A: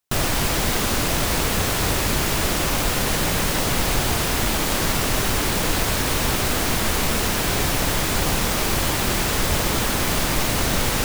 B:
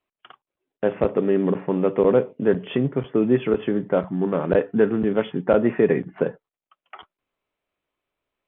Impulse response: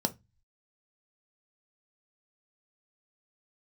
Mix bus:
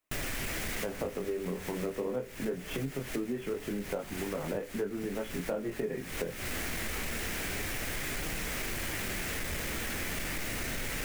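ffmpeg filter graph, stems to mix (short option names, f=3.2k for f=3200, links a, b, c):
-filter_complex "[0:a]equalizer=f=125:t=o:w=1:g=-4,equalizer=f=1k:t=o:w=1:g=-8,equalizer=f=2k:t=o:w=1:g=8,equalizer=f=4k:t=o:w=1:g=-5,asoftclip=type=tanh:threshold=-19.5dB,volume=-2dB[a];[1:a]flanger=delay=19.5:depth=4.1:speed=0.24,acrossover=split=260|3000[b][c][d];[b]acompressor=threshold=-23dB:ratio=6[e];[e][c][d]amix=inputs=3:normalize=0,volume=2.5dB,asplit=2[f][g];[g]apad=whole_len=487198[h];[a][h]sidechaincompress=threshold=-25dB:ratio=12:attack=26:release=444[i];[i][f]amix=inputs=2:normalize=0,flanger=delay=6.1:depth=7.1:regen=-53:speed=0.36:shape=triangular,acompressor=threshold=-33dB:ratio=4"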